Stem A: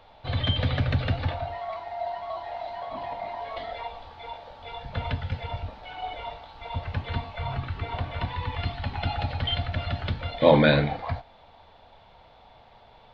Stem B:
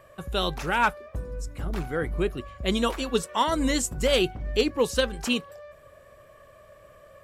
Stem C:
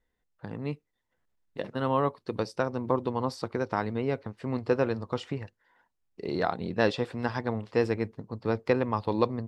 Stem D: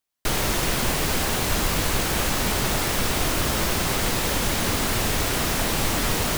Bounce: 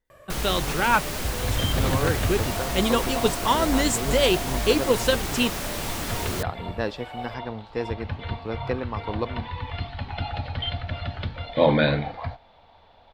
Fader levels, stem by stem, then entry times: -1.5 dB, +2.0 dB, -3.5 dB, -7.0 dB; 1.15 s, 0.10 s, 0.00 s, 0.05 s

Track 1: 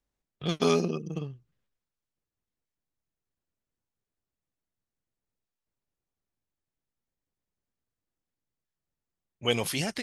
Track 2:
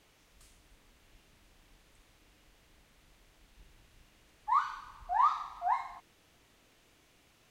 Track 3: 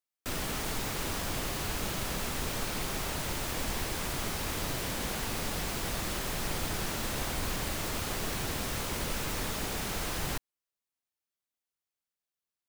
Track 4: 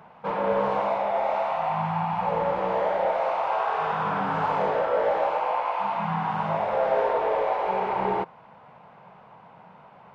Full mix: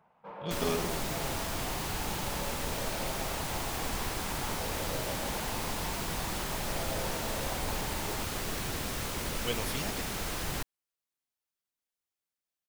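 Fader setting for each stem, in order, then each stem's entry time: -8.0 dB, mute, -1.0 dB, -17.0 dB; 0.00 s, mute, 0.25 s, 0.00 s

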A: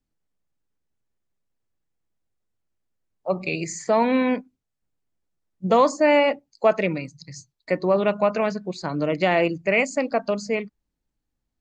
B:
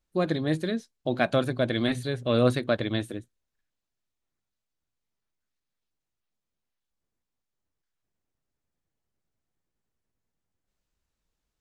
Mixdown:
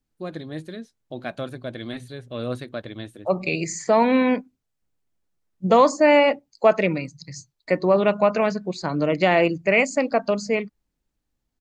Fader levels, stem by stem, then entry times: +2.0 dB, -7.0 dB; 0.00 s, 0.05 s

